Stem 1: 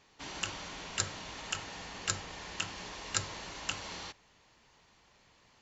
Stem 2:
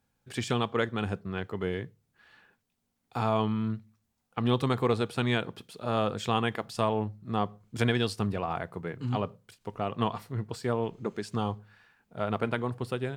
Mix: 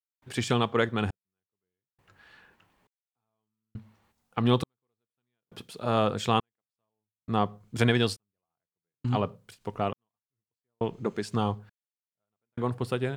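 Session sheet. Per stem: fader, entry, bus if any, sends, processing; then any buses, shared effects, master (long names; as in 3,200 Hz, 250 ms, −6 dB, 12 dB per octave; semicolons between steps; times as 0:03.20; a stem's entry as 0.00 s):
−15.0 dB, 0.00 s, no send, low-pass filter 2,000 Hz 12 dB per octave; automatic ducking −8 dB, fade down 0.40 s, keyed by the second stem
+3.0 dB, 0.00 s, no send, no processing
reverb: not used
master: gate pattern ".xxxx..." 68 BPM −60 dB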